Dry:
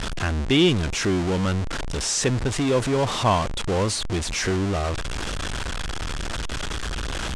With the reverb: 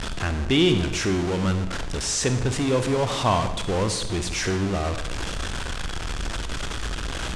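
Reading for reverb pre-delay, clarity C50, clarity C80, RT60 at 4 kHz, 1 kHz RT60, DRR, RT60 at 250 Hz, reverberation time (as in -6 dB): 37 ms, 9.0 dB, 11.5 dB, 0.80 s, 1.0 s, 8.0 dB, 1.1 s, 1.0 s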